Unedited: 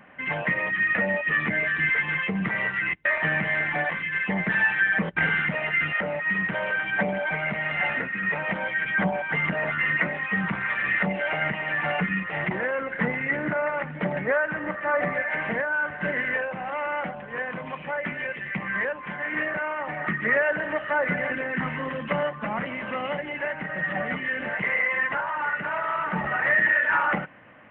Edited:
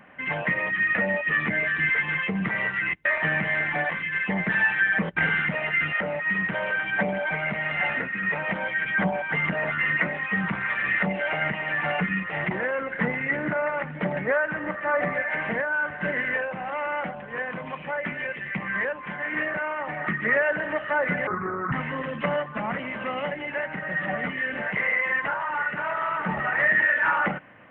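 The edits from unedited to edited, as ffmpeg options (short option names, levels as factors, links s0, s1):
-filter_complex "[0:a]asplit=3[s0][s1][s2];[s0]atrim=end=21.274[s3];[s1]atrim=start=21.27:end=21.59,asetpts=PTS-STARTPTS,asetrate=31311,aresample=44100,atrim=end_sample=19876,asetpts=PTS-STARTPTS[s4];[s2]atrim=start=21.586[s5];[s3][s4]acrossfade=d=0.004:c1=hsin:c2=hsin[s6];[s6][s5]acrossfade=d=0.004:c1=hsin:c2=hsin"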